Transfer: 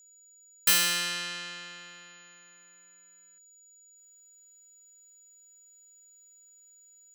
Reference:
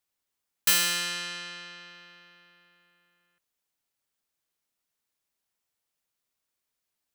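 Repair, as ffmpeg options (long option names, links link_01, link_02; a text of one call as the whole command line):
ffmpeg -i in.wav -af "bandreject=frequency=6900:width=30,asetnsamples=nb_out_samples=441:pad=0,asendcmd='3.97 volume volume -4dB',volume=0dB" out.wav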